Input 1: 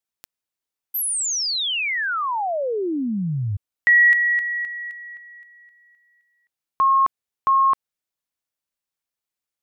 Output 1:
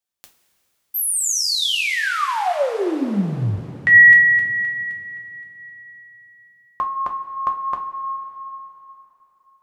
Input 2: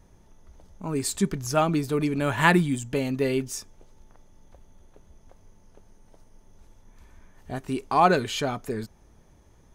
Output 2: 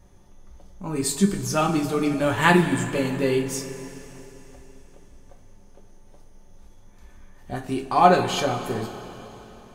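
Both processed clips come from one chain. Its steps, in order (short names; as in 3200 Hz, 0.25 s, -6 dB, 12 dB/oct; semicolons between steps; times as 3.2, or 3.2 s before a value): two-slope reverb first 0.24 s, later 3.6 s, from -18 dB, DRR 1 dB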